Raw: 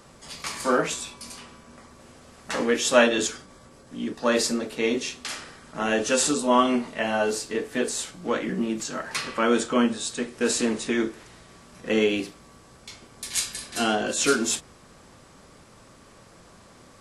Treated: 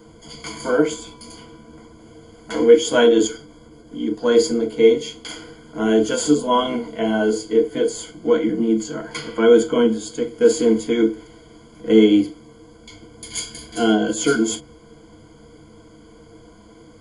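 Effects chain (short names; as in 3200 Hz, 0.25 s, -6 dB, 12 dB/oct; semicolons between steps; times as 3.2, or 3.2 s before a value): low shelf 330 Hz +8.5 dB; small resonant body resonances 320/460/800/3300 Hz, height 9 dB, ringing for 35 ms; downsampling 22050 Hz; ripple EQ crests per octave 1.8, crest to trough 17 dB; gain -5.5 dB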